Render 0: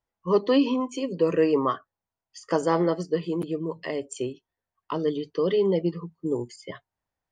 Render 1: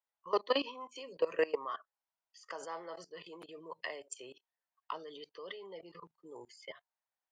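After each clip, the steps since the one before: level quantiser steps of 19 dB; three-band isolator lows -24 dB, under 560 Hz, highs -12 dB, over 6600 Hz; gain +1.5 dB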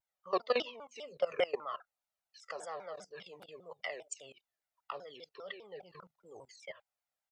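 comb 1.5 ms, depth 70%; shaped vibrato saw down 5 Hz, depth 250 cents; gain -1.5 dB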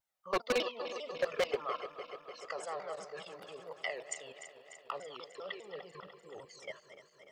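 regenerating reverse delay 0.148 s, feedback 82%, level -12.5 dB; wavefolder -25 dBFS; gain +2 dB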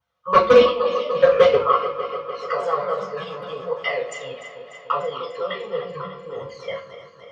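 reverb RT60 0.40 s, pre-delay 3 ms, DRR -7 dB; gain -5 dB

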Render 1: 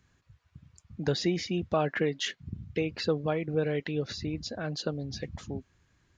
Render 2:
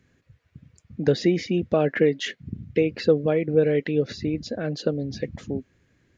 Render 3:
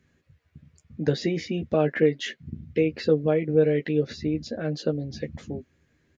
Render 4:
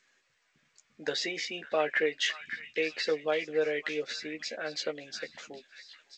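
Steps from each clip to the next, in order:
ten-band EQ 125 Hz +4 dB, 250 Hz +8 dB, 500 Hz +10 dB, 1000 Hz -5 dB, 2000 Hz +7 dB; gain -1 dB
doubler 13 ms -5 dB; gain -3.5 dB
Bessel high-pass 1100 Hz, order 2; delay with a stepping band-pass 0.558 s, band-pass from 1700 Hz, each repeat 0.7 oct, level -8.5 dB; gain +4 dB; G.722 64 kbps 16000 Hz

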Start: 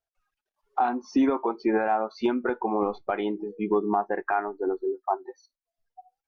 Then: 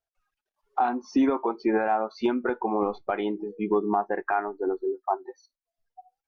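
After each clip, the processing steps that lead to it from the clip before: nothing audible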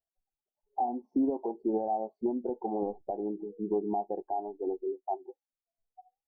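elliptic low-pass 810 Hz, stop band 40 dB; gain -5.5 dB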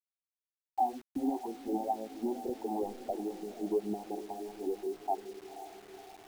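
phaser stages 6, 2.1 Hz, lowest notch 120–1000 Hz; diffused feedback echo 0.51 s, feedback 52%, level -12 dB; bit-crush 9-bit

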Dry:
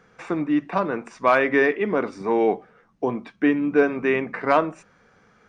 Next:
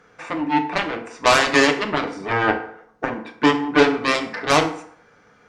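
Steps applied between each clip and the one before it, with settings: added harmonics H 7 -10 dB, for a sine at -6.5 dBFS; low shelf 230 Hz -4.5 dB; FDN reverb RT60 0.65 s, low-frequency decay 0.85×, high-frequency decay 0.65×, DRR 4 dB; gain +1 dB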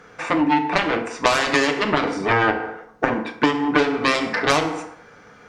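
compressor 10:1, threshold -21 dBFS, peak gain reduction 13.5 dB; gain +7 dB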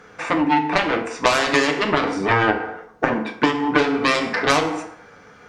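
flange 0.41 Hz, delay 9.1 ms, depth 7 ms, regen +69%; gain +5 dB

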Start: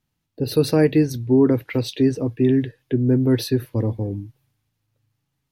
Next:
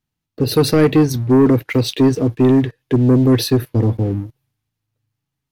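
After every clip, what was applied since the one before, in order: notch 550 Hz, Q 12; sample leveller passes 2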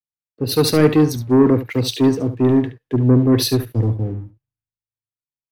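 on a send: echo 72 ms -11 dB; on the sum: three-band expander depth 70%; gain -2 dB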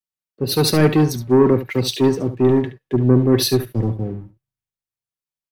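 comb 5.3 ms, depth 42%

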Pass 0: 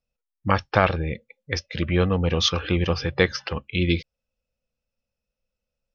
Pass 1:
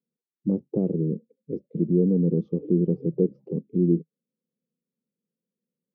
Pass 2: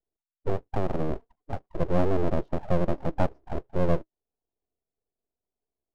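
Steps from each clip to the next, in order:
elliptic band-pass 160–420 Hz, stop band 60 dB; in parallel at +2 dB: limiter -23 dBFS, peak gain reduction 11.5 dB
full-wave rectifier

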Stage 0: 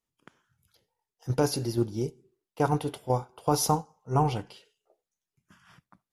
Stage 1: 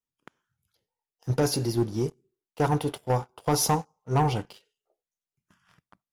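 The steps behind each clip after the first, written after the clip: sample leveller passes 2; gain -4 dB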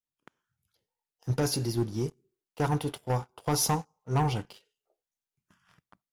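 AGC gain up to 4 dB; dynamic EQ 550 Hz, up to -4 dB, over -33 dBFS, Q 0.71; gain -5.5 dB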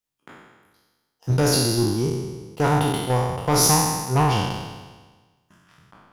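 spectral trails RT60 1.34 s; gain +5.5 dB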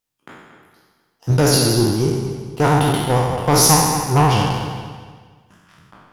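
vibrato 13 Hz 55 cents; on a send: dark delay 0.231 s, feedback 34%, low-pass 3000 Hz, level -10 dB; on the sum: gain +4.5 dB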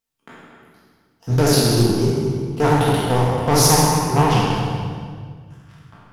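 shoebox room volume 1500 m³, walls mixed, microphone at 1.6 m; Doppler distortion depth 0.22 ms; gain -3.5 dB

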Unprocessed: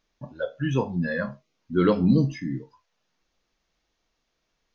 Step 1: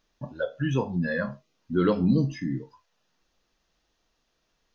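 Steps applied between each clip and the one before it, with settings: notch 2200 Hz, Q 13; in parallel at +2.5 dB: compressor, threshold -29 dBFS, peak gain reduction 14 dB; on the sum: gain -5 dB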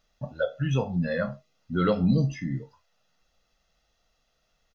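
comb 1.5 ms, depth 57%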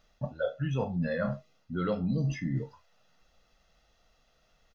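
high shelf 4000 Hz -5.5 dB; reverse; compressor 5:1, threshold -33 dBFS, peak gain reduction 14 dB; reverse; gain +5 dB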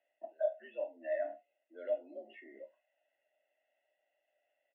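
vowel filter e; mistuned SSB +82 Hz 200–3100 Hz

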